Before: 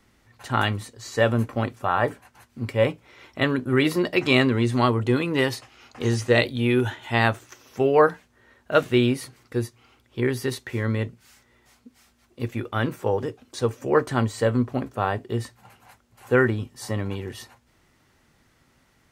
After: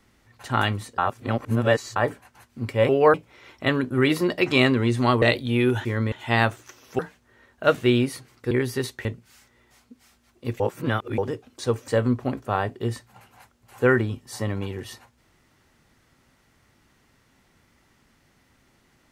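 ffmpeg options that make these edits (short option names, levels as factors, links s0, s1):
-filter_complex "[0:a]asplit=14[s0][s1][s2][s3][s4][s5][s6][s7][s8][s9][s10][s11][s12][s13];[s0]atrim=end=0.982[s14];[s1]atrim=start=0.978:end=1.962,asetpts=PTS-STARTPTS,areverse[s15];[s2]atrim=start=1.958:end=2.892[s16];[s3]atrim=start=7.818:end=8.072[s17];[s4]atrim=start=2.888:end=4.972[s18];[s5]atrim=start=6.318:end=6.952[s19];[s6]atrim=start=10.728:end=11.002[s20];[s7]atrim=start=6.948:end=7.822[s21];[s8]atrim=start=8.068:end=9.592[s22];[s9]atrim=start=10.188:end=10.732[s23];[s10]atrim=start=10.998:end=12.552[s24];[s11]atrim=start=12.548:end=13.132,asetpts=PTS-STARTPTS,areverse[s25];[s12]atrim=start=13.128:end=13.832[s26];[s13]atrim=start=14.368[s27];[s14][s15]acrossfade=d=0.004:c1=hsin:c2=hsin[s28];[s28][s16]acrossfade=d=0.004:c1=hsin:c2=hsin[s29];[s29][s17]acrossfade=d=0.004:c1=hsin:c2=hsin[s30];[s30][s18]acrossfade=d=0.004:c1=hsin:c2=hsin[s31];[s31][s19]acrossfade=d=0.004:c1=hsin:c2=hsin[s32];[s32][s20]acrossfade=d=0.004:c1=hsin:c2=hsin[s33];[s33][s21]acrossfade=d=0.004:c1=hsin:c2=hsin[s34];[s34][s22]acrossfade=d=0.004:c1=hsin:c2=hsin[s35];[s35][s23]acrossfade=d=0.004:c1=hsin:c2=hsin[s36];[s36][s24]acrossfade=d=0.004:c1=hsin:c2=hsin[s37];[s37][s25]acrossfade=d=0.004:c1=hsin:c2=hsin[s38];[s38][s26]acrossfade=d=0.004:c1=hsin:c2=hsin[s39];[s39][s27]acrossfade=d=0.004:c1=hsin:c2=hsin"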